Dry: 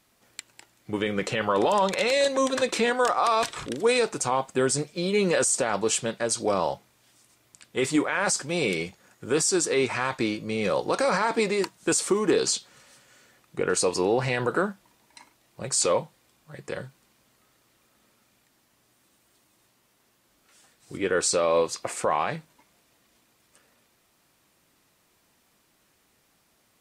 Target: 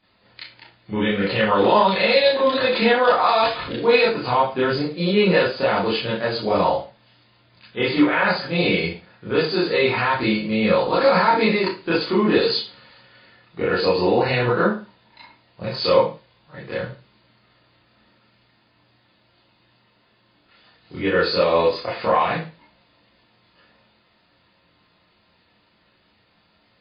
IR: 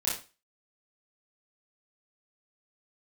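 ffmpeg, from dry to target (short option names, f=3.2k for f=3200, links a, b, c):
-filter_complex "[1:a]atrim=start_sample=2205[a];[0:a][a]afir=irnorm=-1:irlink=0" -ar 11025 -c:a libmp3lame -b:a 24k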